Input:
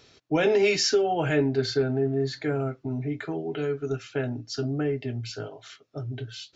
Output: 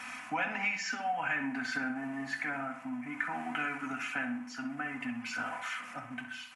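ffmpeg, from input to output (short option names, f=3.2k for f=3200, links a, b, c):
-filter_complex "[0:a]aeval=exprs='val(0)+0.5*0.00891*sgn(val(0))':c=same,highpass=76,aecho=1:1:4:0.65,asplit=2[a][b];[b]aecho=0:1:109:0.075[c];[a][c]amix=inputs=2:normalize=0,tremolo=f=0.54:d=0.53,firequalizer=gain_entry='entry(160,0);entry(240,9);entry(380,-25);entry(630,2);entry(900,10);entry(2400,11);entry(3800,-12);entry(7100,-1)':delay=0.05:min_phase=1,acompressor=threshold=-26dB:ratio=6,lowshelf=f=240:g=-11,asplit=2[d][e];[e]adelay=65,lowpass=f=3.2k:p=1,volume=-8.5dB,asplit=2[f][g];[g]adelay=65,lowpass=f=3.2k:p=1,volume=0.5,asplit=2[h][i];[i]adelay=65,lowpass=f=3.2k:p=1,volume=0.5,asplit=2[j][k];[k]adelay=65,lowpass=f=3.2k:p=1,volume=0.5,asplit=2[l][m];[m]adelay=65,lowpass=f=3.2k:p=1,volume=0.5,asplit=2[n][o];[o]adelay=65,lowpass=f=3.2k:p=1,volume=0.5[p];[f][h][j][l][n][p]amix=inputs=6:normalize=0[q];[d][q]amix=inputs=2:normalize=0,volume=-3dB" -ar 44100 -c:a ac3 -b:a 64k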